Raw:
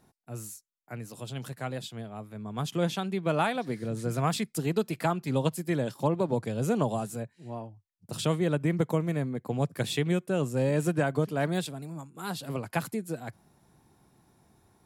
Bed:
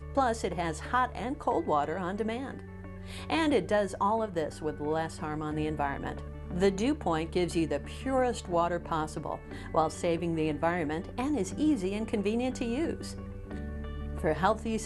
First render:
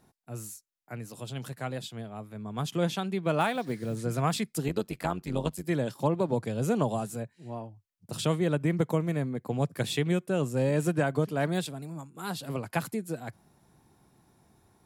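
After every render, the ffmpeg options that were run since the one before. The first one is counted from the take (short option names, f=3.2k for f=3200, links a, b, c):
-filter_complex "[0:a]asettb=1/sr,asplit=3[a][b][c];[a]atrim=end=3.404[d];[b]atrim=start=3.4:end=3.96,asetpts=PTS-STARTPTS,afade=t=in:d=0.004:c=qsin,afade=t=out:st=0.556:d=0.004:c=qsin,acrusher=bits=7:mode=log:mix=0:aa=0.000001[e];[c]atrim=start=3.956[f];[d][e]acrossfade=d=0.004:c1=hsin:c2=qsin[g];[g][f]acrossfade=d=0.004:c1=qsin:c2=hsin,asettb=1/sr,asplit=3[h][i][j];[h]atrim=end=4.684[k];[i]atrim=start=4.68:end=5.64,asetpts=PTS-STARTPTS,afade=t=in:d=0.004:c=qsin,afade=t=out:st=0.956:d=0.004:c=qsin,tremolo=f=95:d=0.75[l];[j]atrim=start=5.636[m];[k][l]acrossfade=d=0.004:c1=hsin:c2=qsin[n];[n][m]acrossfade=d=0.004:c1=qsin:c2=hsin"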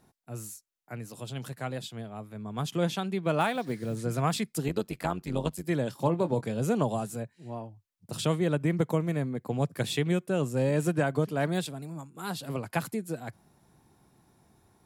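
-filter_complex "[0:a]asettb=1/sr,asplit=3[a][b][c];[a]atrim=end=5.904[d];[b]atrim=start=5.9:end=6.6,asetpts=PTS-STARTPTS,afade=t=in:d=0.004:c=qsin,afade=t=out:st=0.696:d=0.004:c=qsin,asplit=2[e][f];[f]adelay=23,volume=-11.5dB[g];[e][g]amix=inputs=2:normalize=0,atrim=end_sample=30870[h];[c]atrim=start=6.596[i];[d][h]acrossfade=d=0.004:c1=hsin:c2=qsin[j];[j][i]acrossfade=d=0.004:c1=qsin:c2=hsin"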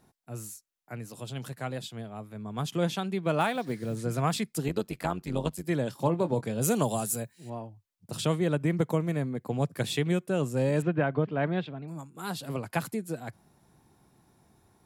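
-filter_complex "[0:a]asettb=1/sr,asplit=3[a][b][c];[a]atrim=end=6.614[d];[b]atrim=start=6.61:end=7.5,asetpts=PTS-STARTPTS,afade=t=in:d=0.004:c=qsin,afade=t=out:st=0.886:d=0.004:c=qsin,aemphasis=mode=production:type=75kf[e];[c]atrim=start=7.496[f];[d][e]acrossfade=d=0.004:c1=hsin:c2=qsin[g];[g][f]acrossfade=d=0.004:c1=qsin:c2=hsin,asettb=1/sr,asplit=3[h][i][j];[h]atrim=end=10.824[k];[i]atrim=start=10.82:end=11.88,asetpts=PTS-STARTPTS,afade=t=in:d=0.004:c=qsin,afade=t=out:st=1.056:d=0.004:c=qsin,lowpass=f=3.1k:w=0.5412,lowpass=f=3.1k:w=1.3066[l];[j]atrim=start=11.876[m];[k][l]acrossfade=d=0.004:c1=hsin:c2=qsin[n];[n][m]acrossfade=d=0.004:c1=qsin:c2=hsin"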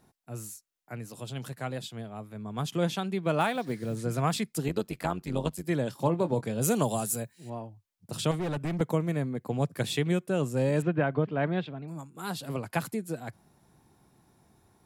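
-filter_complex "[0:a]asettb=1/sr,asplit=3[a][b][c];[a]atrim=end=8.314[d];[b]atrim=start=8.31:end=8.81,asetpts=PTS-STARTPTS,afade=t=in:d=0.004:c=qsin,afade=t=out:st=0.496:d=0.004:c=qsin,asoftclip=type=hard:threshold=-28dB[e];[c]atrim=start=8.806[f];[d][e]acrossfade=d=0.004:c1=hsin:c2=qsin[g];[g][f]acrossfade=d=0.004:c1=qsin:c2=hsin"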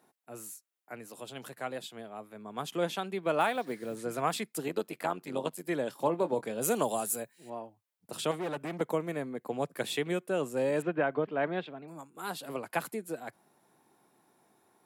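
-af "highpass=320,equalizer=f=5.4k:t=o:w=1.2:g=-5"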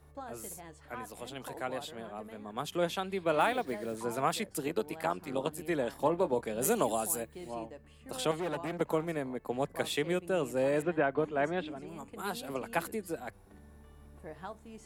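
-filter_complex "[1:a]volume=-17.5dB[a];[0:a][a]amix=inputs=2:normalize=0"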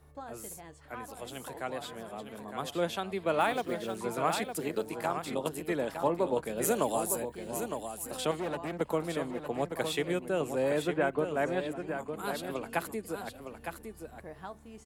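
-af "aecho=1:1:910:0.422"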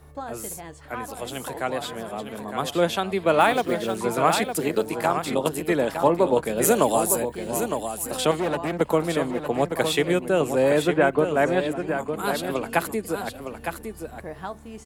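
-af "volume=9.5dB"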